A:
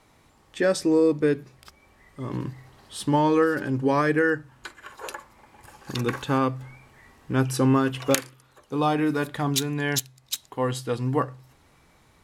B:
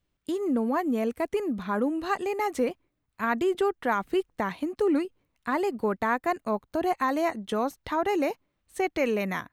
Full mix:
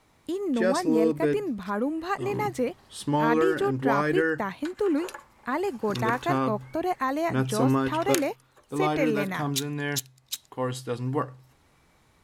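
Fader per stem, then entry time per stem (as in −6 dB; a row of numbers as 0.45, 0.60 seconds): −3.5, −1.0 decibels; 0.00, 0.00 seconds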